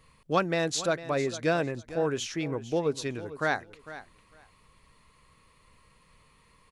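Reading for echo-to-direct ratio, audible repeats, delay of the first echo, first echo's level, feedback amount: -15.0 dB, 2, 0.452 s, -15.0 dB, 16%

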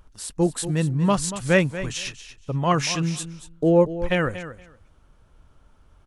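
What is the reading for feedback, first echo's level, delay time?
16%, -13.0 dB, 0.235 s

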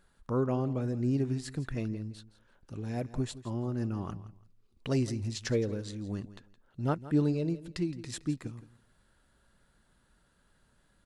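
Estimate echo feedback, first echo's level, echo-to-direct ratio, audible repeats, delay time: 20%, -16.0 dB, -16.0 dB, 2, 0.167 s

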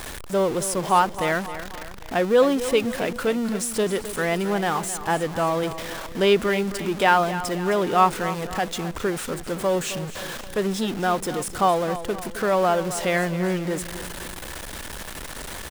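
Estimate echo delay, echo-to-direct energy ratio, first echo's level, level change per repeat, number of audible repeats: 0.264 s, -12.0 dB, -13.0 dB, -6.0 dB, 3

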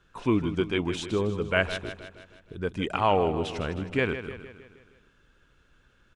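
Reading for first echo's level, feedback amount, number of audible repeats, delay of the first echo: -11.0 dB, 53%, 5, 0.157 s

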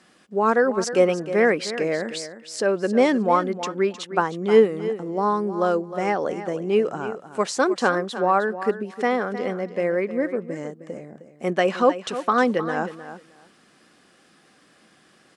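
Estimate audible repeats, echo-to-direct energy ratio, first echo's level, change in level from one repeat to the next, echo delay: 2, -12.5 dB, -12.5 dB, -16.0 dB, 0.31 s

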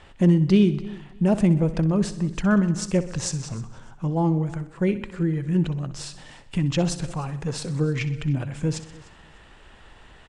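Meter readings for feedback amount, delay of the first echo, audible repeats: no steady repeat, 63 ms, 6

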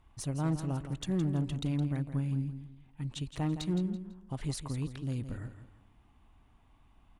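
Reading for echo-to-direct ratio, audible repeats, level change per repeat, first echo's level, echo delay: -10.0 dB, 3, -10.0 dB, -10.5 dB, 0.166 s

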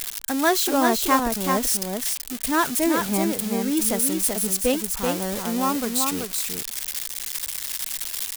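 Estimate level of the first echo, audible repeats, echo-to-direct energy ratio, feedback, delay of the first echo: -4.5 dB, 1, -4.5 dB, no steady repeat, 0.382 s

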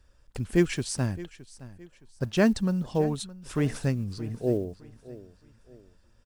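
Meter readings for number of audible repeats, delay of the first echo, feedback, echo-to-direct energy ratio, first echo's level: 2, 0.617 s, 35%, -17.5 dB, -18.0 dB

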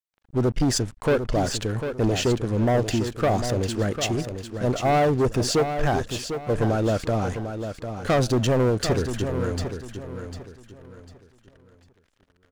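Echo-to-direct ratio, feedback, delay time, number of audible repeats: -8.0 dB, 31%, 0.749 s, 3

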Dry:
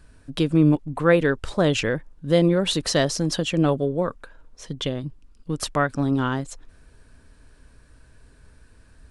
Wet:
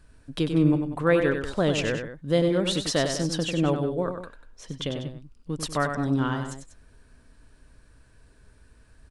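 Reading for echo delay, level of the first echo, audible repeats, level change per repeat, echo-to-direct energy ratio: 96 ms, -7.0 dB, 2, -6.0 dB, -6.0 dB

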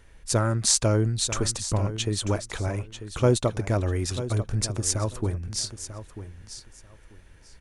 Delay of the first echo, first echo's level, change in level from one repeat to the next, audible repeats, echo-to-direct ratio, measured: 0.942 s, -12.0 dB, -14.5 dB, 2, -12.0 dB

